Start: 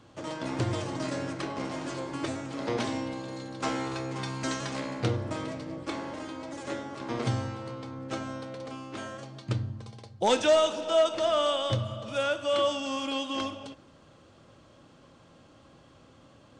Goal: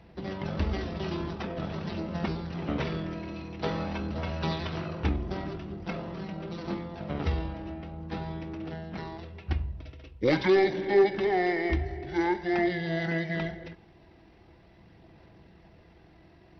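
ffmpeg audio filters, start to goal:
-af "acontrast=86,asetrate=26990,aresample=44100,atempo=1.63392,aphaser=in_gain=1:out_gain=1:delay=3.1:decay=0.21:speed=0.46:type=sinusoidal,volume=0.473"

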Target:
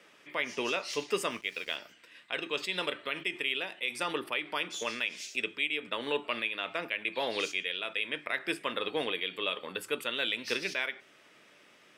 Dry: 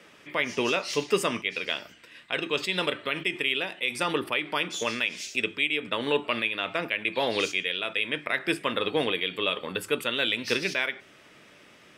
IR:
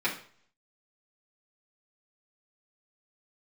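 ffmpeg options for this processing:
-filter_complex "[0:a]highpass=f=290:p=1,asettb=1/sr,asplit=3[s0][s1][s2];[s0]atrim=end=1.304[s3];[s1]atrim=start=1.3:end=1.76,asetpts=PTS-STARTPTS,afade=t=in:d=0.004:c=qsin,afade=t=out:st=0.456:d=0.004:c=qsin,aeval=exprs='sgn(val(0))*max(abs(val(0))-0.00376,0)':c=same[s4];[s2]atrim=start=1.756[s5];[s3][s4]acrossfade=d=0.004:c1=hsin:c2=qsin[s6];[s6][s5]acrossfade=d=0.004:c1=qsin:c2=hsin,volume=0.562"

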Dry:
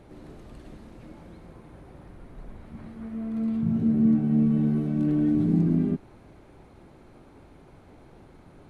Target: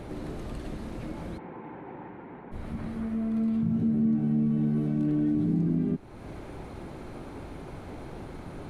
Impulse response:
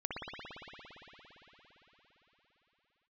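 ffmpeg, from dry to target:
-filter_complex "[0:a]asplit=2[s0][s1];[s1]alimiter=limit=0.0944:level=0:latency=1,volume=0.708[s2];[s0][s2]amix=inputs=2:normalize=0,acompressor=threshold=0.01:ratio=2,asplit=3[s3][s4][s5];[s3]afade=t=out:st=1.37:d=0.02[s6];[s4]highpass=230,equalizer=f=620:t=q:w=4:g=-8,equalizer=f=880:t=q:w=4:g=8,equalizer=f=1200:t=q:w=4:g=-5,lowpass=f=2400:w=0.5412,lowpass=f=2400:w=1.3066,afade=t=in:st=1.37:d=0.02,afade=t=out:st=2.51:d=0.02[s7];[s5]afade=t=in:st=2.51:d=0.02[s8];[s6][s7][s8]amix=inputs=3:normalize=0,volume=2"

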